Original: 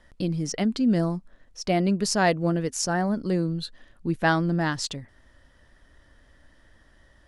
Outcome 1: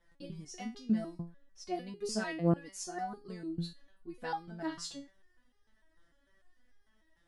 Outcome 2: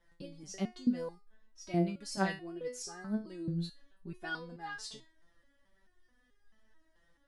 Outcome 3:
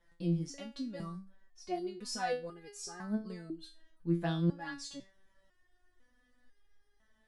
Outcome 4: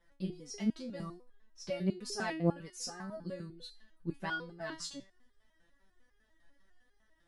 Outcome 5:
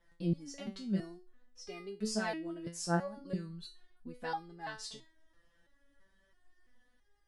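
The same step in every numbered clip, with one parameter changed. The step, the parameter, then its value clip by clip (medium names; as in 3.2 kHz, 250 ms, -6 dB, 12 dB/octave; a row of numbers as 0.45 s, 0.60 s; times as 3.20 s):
resonator arpeggio, rate: 6.7 Hz, 4.6 Hz, 2 Hz, 10 Hz, 3 Hz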